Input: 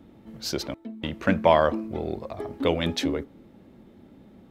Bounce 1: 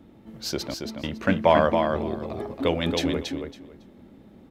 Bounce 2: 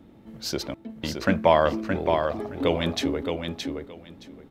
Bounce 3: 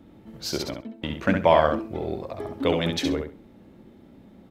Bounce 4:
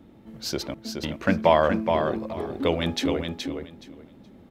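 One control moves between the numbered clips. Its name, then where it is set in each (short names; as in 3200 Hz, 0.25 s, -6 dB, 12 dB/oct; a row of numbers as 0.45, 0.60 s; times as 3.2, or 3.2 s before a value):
feedback echo, time: 277, 620, 66, 422 ms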